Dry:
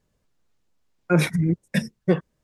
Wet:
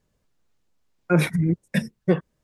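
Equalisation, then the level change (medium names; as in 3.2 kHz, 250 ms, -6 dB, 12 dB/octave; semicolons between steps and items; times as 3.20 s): dynamic bell 5.9 kHz, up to -5 dB, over -49 dBFS, Q 1.3; 0.0 dB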